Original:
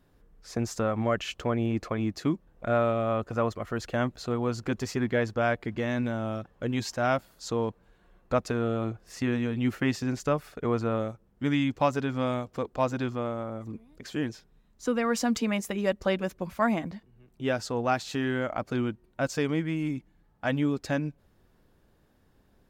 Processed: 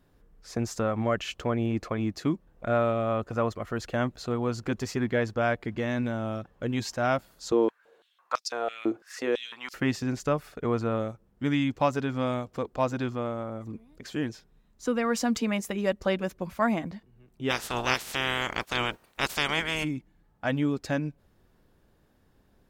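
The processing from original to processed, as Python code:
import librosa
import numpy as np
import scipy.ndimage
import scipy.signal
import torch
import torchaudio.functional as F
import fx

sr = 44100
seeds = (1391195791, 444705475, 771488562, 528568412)

y = fx.filter_held_highpass(x, sr, hz=6.0, low_hz=320.0, high_hz=5000.0, at=(7.52, 9.74))
y = fx.spec_clip(y, sr, under_db=30, at=(17.49, 19.83), fade=0.02)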